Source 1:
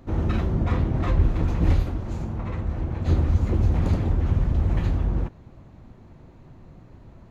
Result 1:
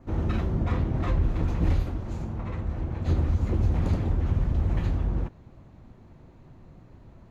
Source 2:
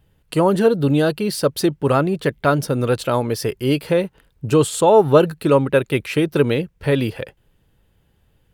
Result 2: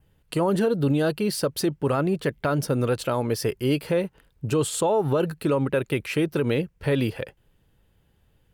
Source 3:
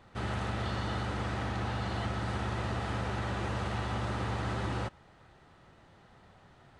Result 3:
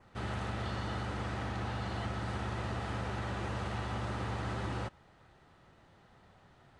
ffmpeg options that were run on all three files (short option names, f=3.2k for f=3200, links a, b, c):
-af "adynamicequalizer=threshold=0.00282:dfrequency=3700:dqfactor=4.1:tfrequency=3700:tqfactor=4.1:attack=5:release=100:ratio=0.375:range=1.5:mode=cutabove:tftype=bell,alimiter=limit=-11.5dB:level=0:latency=1:release=57,volume=-3dB"